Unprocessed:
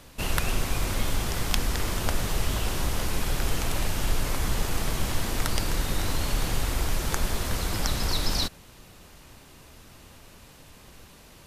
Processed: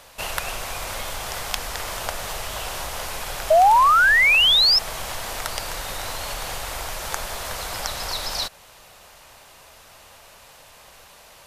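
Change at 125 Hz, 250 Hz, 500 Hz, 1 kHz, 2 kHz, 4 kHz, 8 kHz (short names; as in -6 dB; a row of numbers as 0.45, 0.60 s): -10.5, -11.5, +8.0, +14.0, +13.0, +11.0, +1.5 dB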